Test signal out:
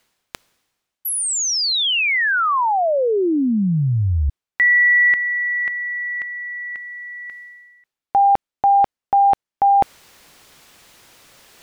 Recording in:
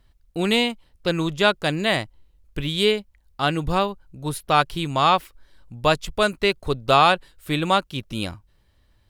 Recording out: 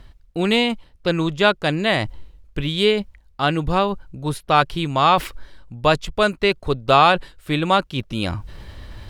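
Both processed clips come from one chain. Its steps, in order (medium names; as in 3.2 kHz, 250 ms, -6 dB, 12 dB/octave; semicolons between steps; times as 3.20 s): treble shelf 7.7 kHz -11.5 dB; reverse; upward compressor, threshold -20 dBFS; reverse; trim +2.5 dB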